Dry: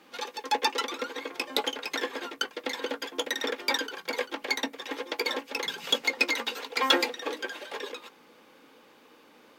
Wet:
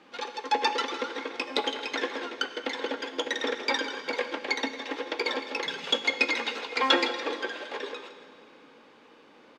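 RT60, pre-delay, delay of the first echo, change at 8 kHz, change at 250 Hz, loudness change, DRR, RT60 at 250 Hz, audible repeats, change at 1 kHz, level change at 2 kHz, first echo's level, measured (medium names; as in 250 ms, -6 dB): 2.4 s, 8 ms, 161 ms, -5.0 dB, +2.0 dB, +0.5 dB, 8.0 dB, 2.6 s, 1, +2.0 dB, +1.0 dB, -14.0 dB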